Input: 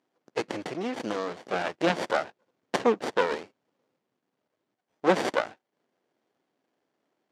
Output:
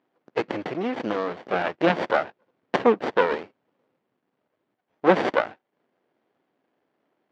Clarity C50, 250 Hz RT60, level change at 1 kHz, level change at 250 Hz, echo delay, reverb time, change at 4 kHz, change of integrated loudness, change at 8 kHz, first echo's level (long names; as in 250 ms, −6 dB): no reverb audible, no reverb audible, +4.5 dB, +4.5 dB, no echo audible, no reverb audible, 0.0 dB, +4.5 dB, can't be measured, no echo audible